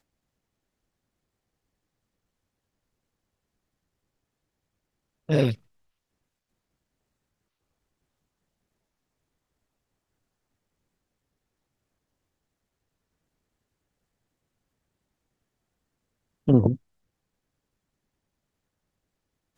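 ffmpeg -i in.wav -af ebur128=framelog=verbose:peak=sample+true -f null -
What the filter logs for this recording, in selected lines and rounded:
Integrated loudness:
  I:         -23.7 LUFS
  Threshold: -34.7 LUFS
Loudness range:
  LRA:         3.1 LU
  Threshold: -51.4 LUFS
  LRA low:   -32.9 LUFS
  LRA high:  -29.8 LUFS
Sample peak:
  Peak:       -5.5 dBFS
True peak:
  Peak:       -5.5 dBFS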